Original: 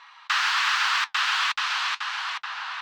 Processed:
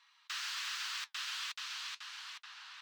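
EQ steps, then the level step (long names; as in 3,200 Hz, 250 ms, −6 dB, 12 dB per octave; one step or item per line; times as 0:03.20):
first difference
low-shelf EQ 150 Hz +7.5 dB
−7.5 dB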